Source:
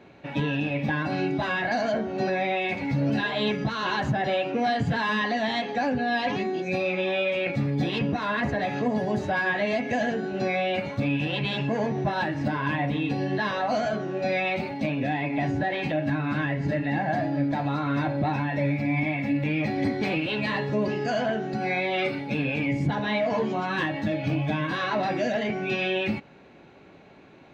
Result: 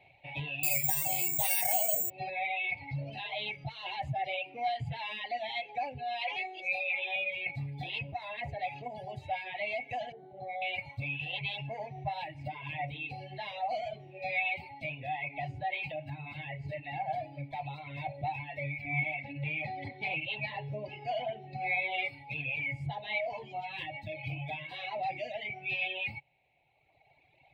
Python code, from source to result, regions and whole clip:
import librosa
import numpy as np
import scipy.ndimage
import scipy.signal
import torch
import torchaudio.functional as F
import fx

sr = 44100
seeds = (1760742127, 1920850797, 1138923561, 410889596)

y = fx.chain(x, sr, fx.resample_bad(factor=6, down='none', up='zero_stuff'),
    fx.env_flatten(amount_pct=50), at=(0.63, 2.1))
y = fx.chain(y, sr, fx.highpass(hz=480.0, slope=12),
    fx.env_flatten(amount_pct=70), at=(6.21, 7.16))
y = fx.chain(y, sr, fx.moving_average(points=17),
    fx.low_shelf(hz=170.0, db=-8.5),
    fx.env_flatten(amount_pct=50), at=(10.12, 10.62))
y = fx.chain(y, sr, fx.bandpass_edges(low_hz=110.0, high_hz=5000.0),
    fx.low_shelf(hz=460.0, db=5.5), at=(18.85, 22.05))
y = fx.notch(y, sr, hz=1100.0, q=9.9)
y = fx.dereverb_blind(y, sr, rt60_s=2.0)
y = fx.curve_eq(y, sr, hz=(140.0, 200.0, 440.0, 770.0, 1500.0, 2200.0, 4100.0, 6100.0, 8900.0), db=(0, -19, -12, 5, -23, 9, -1, -14, -1))
y = y * 10.0 ** (-8.0 / 20.0)